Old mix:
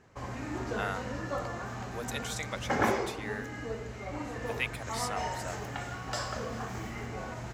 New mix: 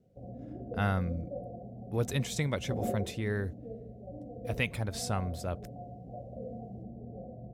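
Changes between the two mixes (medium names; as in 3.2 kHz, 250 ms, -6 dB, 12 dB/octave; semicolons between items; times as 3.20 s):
speech: remove high-pass 740 Hz; background: add rippled Chebyshev low-pass 740 Hz, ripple 9 dB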